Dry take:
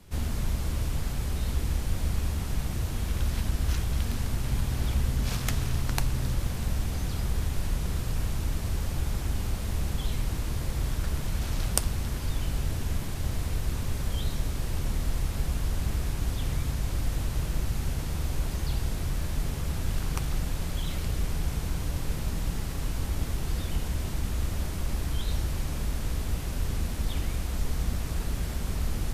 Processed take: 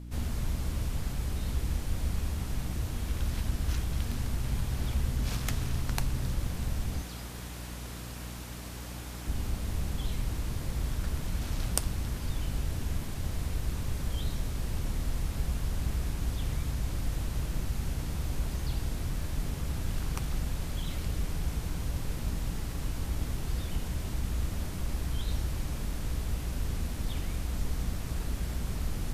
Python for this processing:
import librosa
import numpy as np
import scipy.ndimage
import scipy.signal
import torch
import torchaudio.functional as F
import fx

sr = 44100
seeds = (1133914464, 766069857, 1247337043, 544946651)

y = fx.highpass(x, sr, hz=460.0, slope=6, at=(7.02, 9.27))
y = fx.add_hum(y, sr, base_hz=60, snr_db=11)
y = F.gain(torch.from_numpy(y), -3.5).numpy()